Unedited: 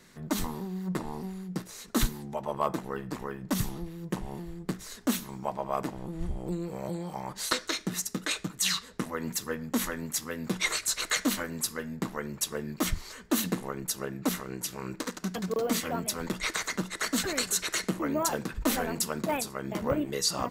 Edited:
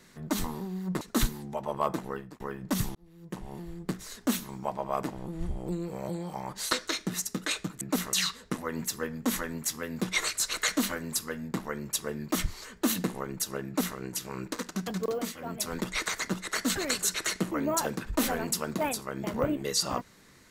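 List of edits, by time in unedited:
0:01.01–0:01.81: remove
0:02.91–0:03.20: fade out
0:03.75–0:04.54: fade in
0:14.14–0:14.46: duplicate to 0:08.61
0:15.52–0:16.15: duck −10 dB, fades 0.29 s

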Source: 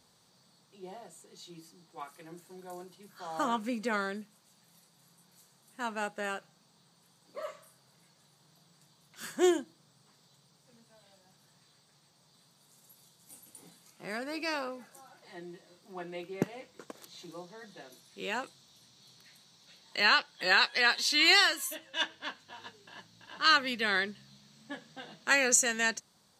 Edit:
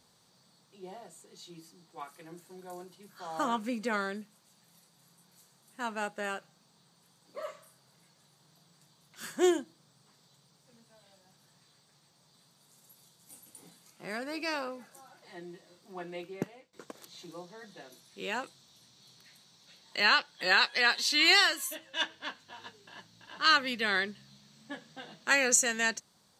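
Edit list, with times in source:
0:16.20–0:16.73: fade out, to −20.5 dB

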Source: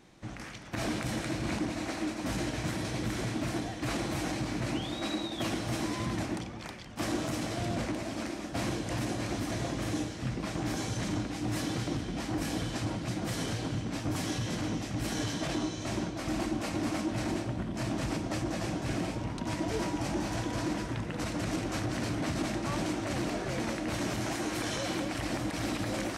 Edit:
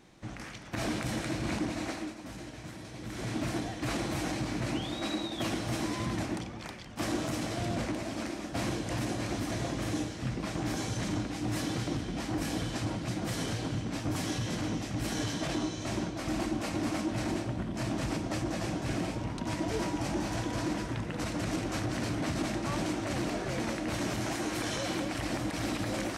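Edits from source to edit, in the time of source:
0:01.88–0:03.34: duck −10.5 dB, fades 0.46 s quadratic

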